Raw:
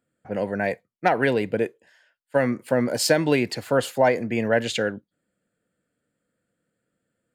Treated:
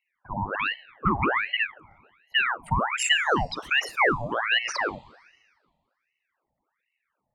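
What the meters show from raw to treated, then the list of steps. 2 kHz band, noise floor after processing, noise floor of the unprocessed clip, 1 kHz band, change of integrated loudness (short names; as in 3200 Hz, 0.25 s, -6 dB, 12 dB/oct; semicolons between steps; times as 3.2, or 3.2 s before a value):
+4.0 dB, -81 dBFS, -80 dBFS, +1.0 dB, -1.5 dB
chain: formant sharpening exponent 3; Schroeder reverb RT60 1.7 s, combs from 30 ms, DRR 19.5 dB; wow and flutter 16 cents; ring modulator with a swept carrier 1400 Hz, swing 75%, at 1.3 Hz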